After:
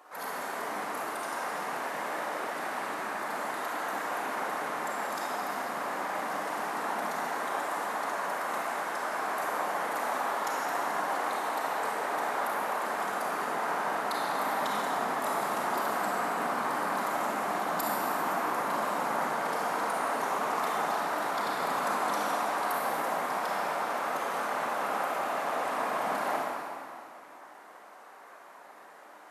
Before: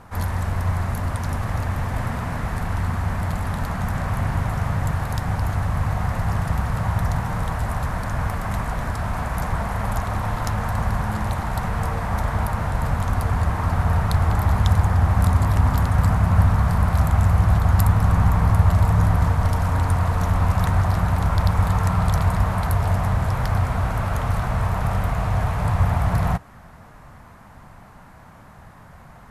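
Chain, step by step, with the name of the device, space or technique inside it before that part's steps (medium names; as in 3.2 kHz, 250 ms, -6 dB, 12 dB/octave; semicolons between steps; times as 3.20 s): whispering ghost (whisper effect; high-pass 380 Hz 24 dB/octave; reverberation RT60 2.3 s, pre-delay 28 ms, DRR -4.5 dB); trim -7.5 dB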